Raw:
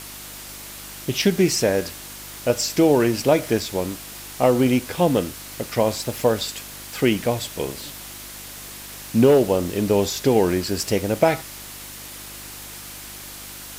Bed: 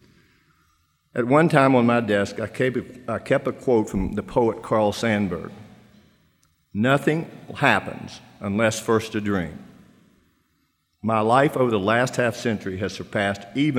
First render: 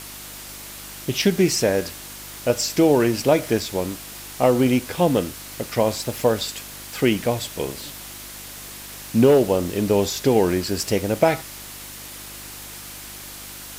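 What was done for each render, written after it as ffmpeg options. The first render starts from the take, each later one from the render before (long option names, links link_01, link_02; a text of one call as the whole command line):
ffmpeg -i in.wav -af anull out.wav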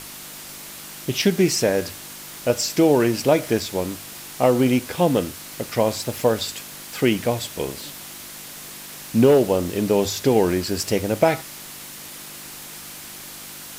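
ffmpeg -i in.wav -af "bandreject=frequency=50:width_type=h:width=4,bandreject=frequency=100:width_type=h:width=4" out.wav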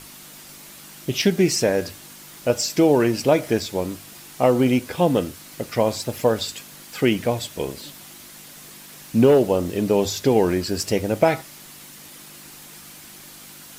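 ffmpeg -i in.wav -af "afftdn=noise_reduction=6:noise_floor=-38" out.wav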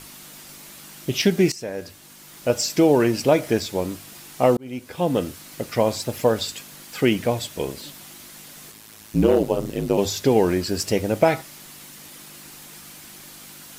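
ffmpeg -i in.wav -filter_complex "[0:a]asettb=1/sr,asplit=3[link_01][link_02][link_03];[link_01]atrim=end=8.714[link_04];[link_02]atrim=start=8.71:end=9.98,asetpts=PTS-STARTPTS,afade=type=in:duration=0.004:curve=qsin,afade=type=out:start_time=1.266:duration=0.004:curve=qsin,aeval=exprs='val(0)*sin(2*PI*54*n/s)':channel_layout=same[link_05];[link_03]atrim=start=9.976[link_06];[link_04][link_05]acrossfade=duration=0.004:curve1=hsin:curve2=qsin[link_07];[link_07][link_06]acrossfade=duration=0.004:curve1=qsin:curve2=hsin,asplit=3[link_08][link_09][link_10];[link_08]atrim=end=1.52,asetpts=PTS-STARTPTS,afade=type=out:start_time=1.516:duration=0.004:curve=hsin:silence=0.149624[link_11];[link_09]atrim=start=1.52:end=4.57,asetpts=PTS-STARTPTS,afade=type=in:duration=1.06:silence=0.149624,afade=type=out:start_time=3.046:duration=0.004:curve=hsin[link_12];[link_10]atrim=start=4.57,asetpts=PTS-STARTPTS,afade=type=in:duration=0.73[link_13];[link_11][link_12][link_13]concat=n=3:v=0:a=1" out.wav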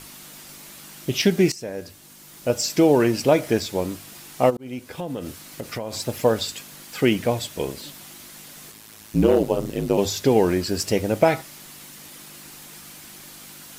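ffmpeg -i in.wav -filter_complex "[0:a]asettb=1/sr,asplit=3[link_01][link_02][link_03];[link_01]atrim=end=1.544[link_04];[link_02]atrim=start=1.54:end=2.64,asetpts=PTS-STARTPTS,afade=type=in:duration=0.004:curve=qsin,afade=type=out:start_time=1.096:duration=0.004:curve=qsin,equalizer=frequency=1700:width=0.37:gain=-3[link_05];[link_03]atrim=start=2.636[link_06];[link_04][link_05]acrossfade=duration=0.004:curve1=hsin:curve2=qsin[link_07];[link_07][link_06]acrossfade=duration=0.004:curve1=qsin:curve2=hsin,asplit=3[link_08][link_09][link_10];[link_08]afade=type=out:start_time=4.49:duration=0.02[link_11];[link_09]acompressor=threshold=-26dB:ratio=6:attack=3.2:release=140:knee=1:detection=peak,afade=type=in:start_time=4.49:duration=0.02,afade=type=out:start_time=5.92:duration=0.02[link_12];[link_10]afade=type=in:start_time=5.92:duration=0.02[link_13];[link_11][link_12][link_13]amix=inputs=3:normalize=0" out.wav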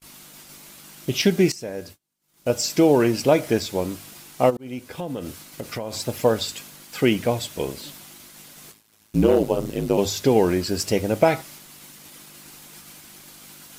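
ffmpeg -i in.wav -af "bandreject=frequency=1800:width=27,agate=range=-34dB:threshold=-42dB:ratio=16:detection=peak" out.wav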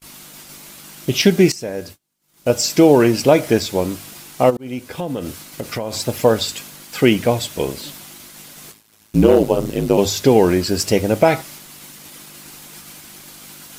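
ffmpeg -i in.wav -af "volume=5.5dB,alimiter=limit=-1dB:level=0:latency=1" out.wav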